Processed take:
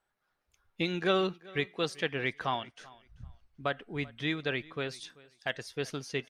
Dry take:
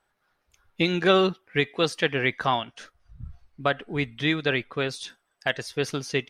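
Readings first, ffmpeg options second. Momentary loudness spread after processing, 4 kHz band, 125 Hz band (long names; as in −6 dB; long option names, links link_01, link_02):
19 LU, −8.0 dB, −8.0 dB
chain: -af "aecho=1:1:387|774:0.075|0.0157,volume=-8dB"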